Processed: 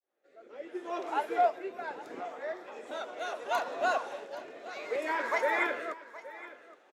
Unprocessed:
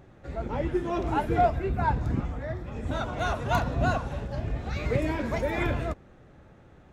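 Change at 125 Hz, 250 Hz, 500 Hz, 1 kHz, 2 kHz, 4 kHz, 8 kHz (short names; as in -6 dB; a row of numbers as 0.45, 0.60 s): under -40 dB, -13.5 dB, -3.5 dB, -2.5 dB, +0.5 dB, -3.0 dB, n/a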